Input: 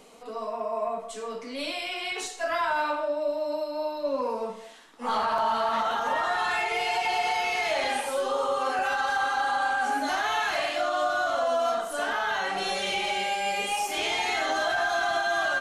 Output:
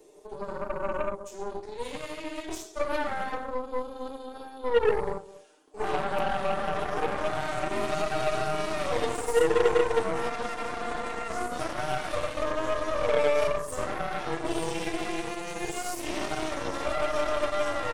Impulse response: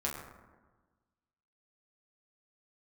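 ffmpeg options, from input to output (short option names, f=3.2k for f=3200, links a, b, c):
-af "highshelf=f=12k:g=10,asetrate=38367,aresample=44100,highpass=f=370:t=q:w=4,equalizer=f=2.1k:w=0.36:g=-10.5,aecho=1:1:6.6:0.85,aeval=exprs='0.266*(cos(1*acos(clip(val(0)/0.266,-1,1)))-cos(1*PI/2))+0.0531*(cos(3*acos(clip(val(0)/0.266,-1,1)))-cos(3*PI/2))+0.0237*(cos(8*acos(clip(val(0)/0.266,-1,1)))-cos(8*PI/2))':c=same,volume=1.5dB"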